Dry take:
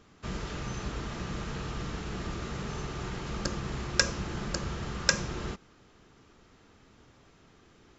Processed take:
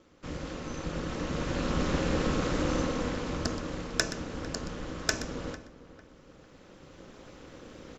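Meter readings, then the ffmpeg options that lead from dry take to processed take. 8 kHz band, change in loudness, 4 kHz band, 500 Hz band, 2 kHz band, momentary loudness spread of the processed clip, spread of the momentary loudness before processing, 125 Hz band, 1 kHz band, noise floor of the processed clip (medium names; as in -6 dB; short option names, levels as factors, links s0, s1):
no reading, +1.0 dB, -2.0 dB, +5.5 dB, -1.5 dB, 20 LU, 9 LU, +0.5 dB, +2.0 dB, -55 dBFS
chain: -filter_complex "[0:a]aeval=exprs='0.668*(cos(1*acos(clip(val(0)/0.668,-1,1)))-cos(1*PI/2))+0.133*(cos(2*acos(clip(val(0)/0.668,-1,1)))-cos(2*PI/2))':c=same,equalizer=f=410:t=o:w=0.48:g=8.5,aeval=exprs='val(0)*sin(2*PI*110*n/s)':c=same,asplit=2[s0][s1];[s1]adelay=450,lowpass=f=2100:p=1,volume=0.158,asplit=2[s2][s3];[s3]adelay=450,lowpass=f=2100:p=1,volume=0.31,asplit=2[s4][s5];[s5]adelay=450,lowpass=f=2100:p=1,volume=0.31[s6];[s2][s4][s6]amix=inputs=3:normalize=0[s7];[s0][s7]amix=inputs=2:normalize=0,dynaudnorm=f=660:g=5:m=4.73,asplit=2[s8][s9];[s9]aecho=0:1:124:0.2[s10];[s8][s10]amix=inputs=2:normalize=0,volume=0.891"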